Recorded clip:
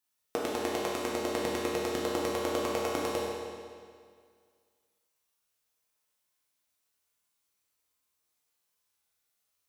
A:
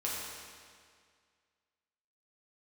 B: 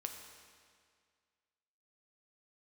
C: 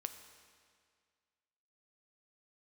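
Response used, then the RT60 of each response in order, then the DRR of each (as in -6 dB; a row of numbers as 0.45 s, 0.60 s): A; 2.0 s, 2.0 s, 2.0 s; -6.5 dB, 3.5 dB, 7.5 dB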